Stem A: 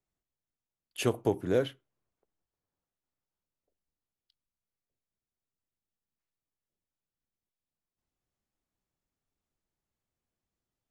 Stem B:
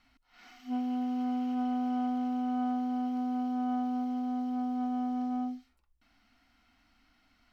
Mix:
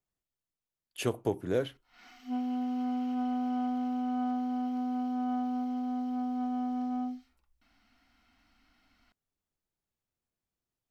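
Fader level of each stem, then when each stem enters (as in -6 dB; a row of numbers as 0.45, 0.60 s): -2.5, -0.5 dB; 0.00, 1.60 s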